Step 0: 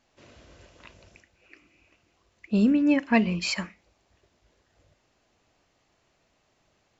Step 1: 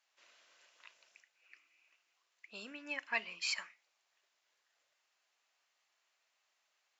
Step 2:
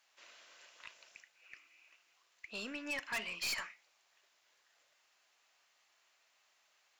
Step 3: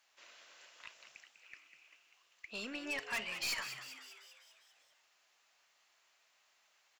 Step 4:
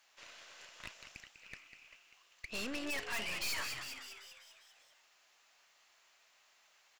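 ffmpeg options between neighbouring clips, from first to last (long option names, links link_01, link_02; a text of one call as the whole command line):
ffmpeg -i in.wav -af "highpass=1200,volume=-7dB" out.wav
ffmpeg -i in.wav -af "aeval=exprs='(tanh(112*val(0)+0.15)-tanh(0.15))/112':channel_layout=same,volume=7dB" out.wav
ffmpeg -i in.wav -filter_complex "[0:a]asplit=8[link_01][link_02][link_03][link_04][link_05][link_06][link_07][link_08];[link_02]adelay=197,afreqshift=130,volume=-10dB[link_09];[link_03]adelay=394,afreqshift=260,volume=-14.7dB[link_10];[link_04]adelay=591,afreqshift=390,volume=-19.5dB[link_11];[link_05]adelay=788,afreqshift=520,volume=-24.2dB[link_12];[link_06]adelay=985,afreqshift=650,volume=-28.9dB[link_13];[link_07]adelay=1182,afreqshift=780,volume=-33.7dB[link_14];[link_08]adelay=1379,afreqshift=910,volume=-38.4dB[link_15];[link_01][link_09][link_10][link_11][link_12][link_13][link_14][link_15]amix=inputs=8:normalize=0" out.wav
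ffmpeg -i in.wav -af "aeval=exprs='(tanh(178*val(0)+0.75)-tanh(0.75))/178':channel_layout=same,volume=8.5dB" out.wav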